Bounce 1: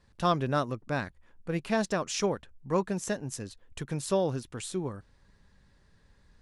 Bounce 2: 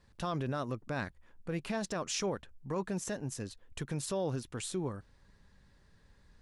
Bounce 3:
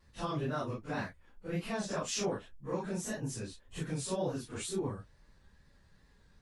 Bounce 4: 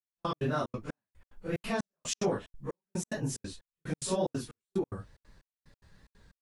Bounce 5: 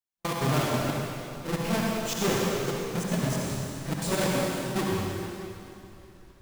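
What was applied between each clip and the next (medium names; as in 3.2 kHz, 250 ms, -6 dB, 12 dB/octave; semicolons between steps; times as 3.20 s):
peak limiter -24.5 dBFS, peak gain reduction 10.5 dB; trim -1 dB
phase randomisation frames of 100 ms; wow and flutter 59 cents
trance gate "...x.xxx.xx" 183 bpm -60 dB; trim +4.5 dB
square wave that keeps the level; reverberation RT60 2.8 s, pre-delay 53 ms, DRR -3 dB; trim -2 dB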